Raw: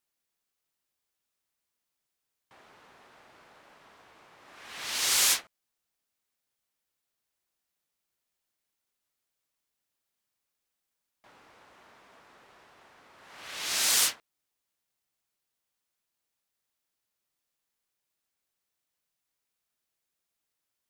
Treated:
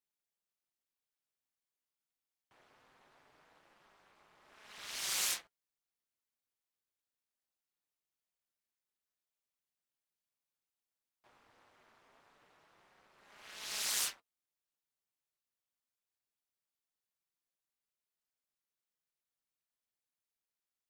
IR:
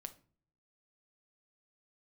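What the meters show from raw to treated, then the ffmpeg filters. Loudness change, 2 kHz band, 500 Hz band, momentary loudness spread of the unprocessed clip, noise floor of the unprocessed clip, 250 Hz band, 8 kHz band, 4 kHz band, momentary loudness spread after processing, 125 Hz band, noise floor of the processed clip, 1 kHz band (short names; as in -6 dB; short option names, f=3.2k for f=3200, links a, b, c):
-10.5 dB, -10.5 dB, -10.5 dB, 17 LU, -85 dBFS, -11.0 dB, -10.5 dB, -10.5 dB, 17 LU, n/a, under -85 dBFS, -10.5 dB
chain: -af "tremolo=f=220:d=0.947,flanger=delay=4.7:depth=3.8:regen=-53:speed=0.22:shape=sinusoidal,volume=-2.5dB"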